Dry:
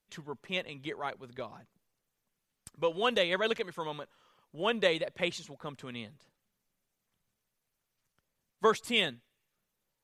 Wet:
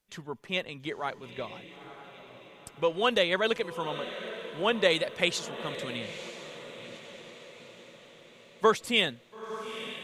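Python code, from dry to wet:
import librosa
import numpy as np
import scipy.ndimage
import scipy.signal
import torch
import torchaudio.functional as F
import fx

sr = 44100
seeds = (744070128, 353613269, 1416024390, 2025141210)

y = fx.high_shelf(x, sr, hz=2800.0, db=8.0, at=(4.9, 5.98))
y = fx.echo_diffused(y, sr, ms=925, feedback_pct=51, wet_db=-12.0)
y = y * 10.0 ** (3.0 / 20.0)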